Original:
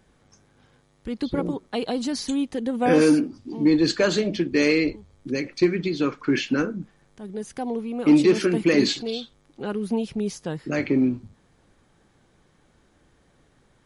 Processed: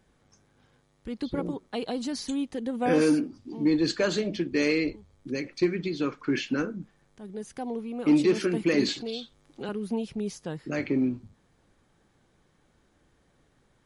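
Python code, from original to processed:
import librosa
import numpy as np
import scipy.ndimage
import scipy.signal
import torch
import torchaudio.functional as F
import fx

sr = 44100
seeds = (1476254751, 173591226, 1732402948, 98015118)

y = fx.band_squash(x, sr, depth_pct=40, at=(8.88, 9.69))
y = y * librosa.db_to_amplitude(-5.0)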